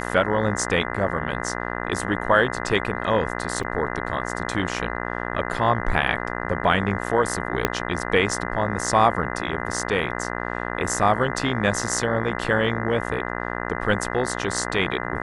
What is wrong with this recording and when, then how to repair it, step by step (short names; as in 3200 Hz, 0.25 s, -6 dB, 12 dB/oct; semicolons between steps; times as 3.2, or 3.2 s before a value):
buzz 60 Hz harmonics 34 -29 dBFS
3.63–3.64 gap 5.4 ms
7.65 pop -4 dBFS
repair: de-click; de-hum 60 Hz, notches 34; interpolate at 3.63, 5.4 ms